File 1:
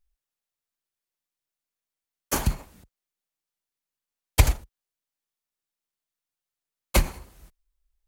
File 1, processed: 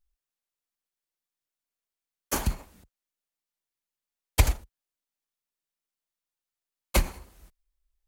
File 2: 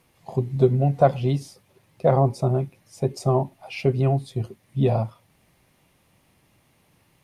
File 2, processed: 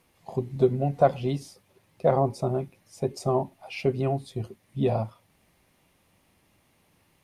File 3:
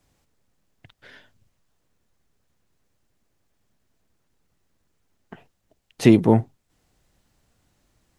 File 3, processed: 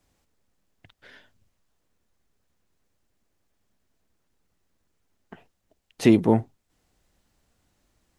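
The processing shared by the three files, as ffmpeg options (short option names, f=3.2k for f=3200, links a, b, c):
-af "equalizer=f=130:w=3.9:g=-6.5,volume=-2.5dB"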